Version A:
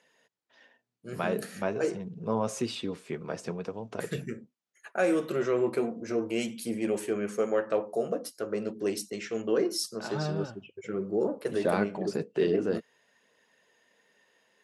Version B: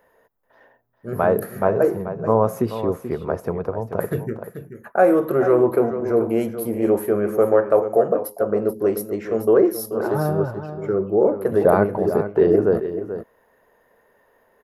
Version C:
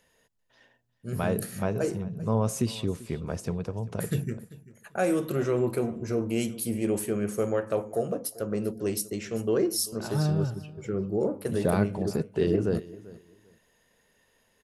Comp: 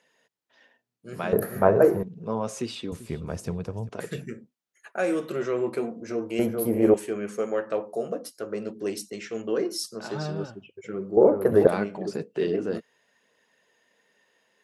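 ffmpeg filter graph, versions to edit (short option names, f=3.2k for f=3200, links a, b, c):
-filter_complex "[1:a]asplit=3[a][b][c];[0:a]asplit=5[d][e][f][g][h];[d]atrim=end=1.332[i];[a]atrim=start=1.328:end=2.032[j];[e]atrim=start=2.028:end=2.922[k];[2:a]atrim=start=2.918:end=3.892[l];[f]atrim=start=3.888:end=6.392[m];[b]atrim=start=6.388:end=6.942[n];[g]atrim=start=6.938:end=11.172[o];[c]atrim=start=11.168:end=11.672[p];[h]atrim=start=11.668[q];[i][j]acrossfade=d=0.004:c1=hsin:c2=hsin[r];[r][k]acrossfade=d=0.004:c1=hsin:c2=hsin[s];[s][l]acrossfade=d=0.004:c1=hsin:c2=hsin[t];[t][m]acrossfade=d=0.004:c1=hsin:c2=hsin[u];[u][n]acrossfade=d=0.004:c1=hsin:c2=hsin[v];[v][o]acrossfade=d=0.004:c1=hsin:c2=hsin[w];[w][p]acrossfade=d=0.004:c1=hsin:c2=hsin[x];[x][q]acrossfade=d=0.004:c1=hsin:c2=hsin"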